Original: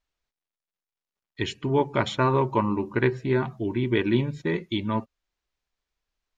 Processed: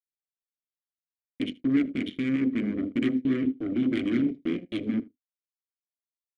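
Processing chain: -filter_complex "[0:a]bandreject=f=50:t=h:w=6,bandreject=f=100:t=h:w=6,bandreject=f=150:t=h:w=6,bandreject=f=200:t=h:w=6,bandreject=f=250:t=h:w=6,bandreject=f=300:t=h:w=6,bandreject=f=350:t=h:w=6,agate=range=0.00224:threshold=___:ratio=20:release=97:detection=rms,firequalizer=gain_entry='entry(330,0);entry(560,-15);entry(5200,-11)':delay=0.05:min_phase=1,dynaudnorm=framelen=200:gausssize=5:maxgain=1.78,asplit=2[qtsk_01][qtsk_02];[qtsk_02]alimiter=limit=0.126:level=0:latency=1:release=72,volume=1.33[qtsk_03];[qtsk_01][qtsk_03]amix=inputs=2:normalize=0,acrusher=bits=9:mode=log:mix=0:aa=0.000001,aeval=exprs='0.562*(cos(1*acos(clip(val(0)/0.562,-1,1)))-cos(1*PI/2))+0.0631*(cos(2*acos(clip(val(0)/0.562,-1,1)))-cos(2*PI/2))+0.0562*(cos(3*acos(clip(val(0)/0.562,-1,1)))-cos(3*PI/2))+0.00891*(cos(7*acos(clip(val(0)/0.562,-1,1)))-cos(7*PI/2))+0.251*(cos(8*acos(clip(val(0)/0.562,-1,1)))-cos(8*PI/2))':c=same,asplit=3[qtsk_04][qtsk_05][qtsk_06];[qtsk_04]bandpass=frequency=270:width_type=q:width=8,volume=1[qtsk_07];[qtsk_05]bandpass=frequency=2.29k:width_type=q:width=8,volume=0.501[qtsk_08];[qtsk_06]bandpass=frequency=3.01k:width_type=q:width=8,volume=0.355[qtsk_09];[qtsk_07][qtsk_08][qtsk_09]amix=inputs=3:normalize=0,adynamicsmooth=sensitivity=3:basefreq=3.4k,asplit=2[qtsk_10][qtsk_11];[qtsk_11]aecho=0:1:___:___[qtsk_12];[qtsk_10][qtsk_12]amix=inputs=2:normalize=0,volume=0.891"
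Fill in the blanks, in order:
0.0141, 78, 0.0668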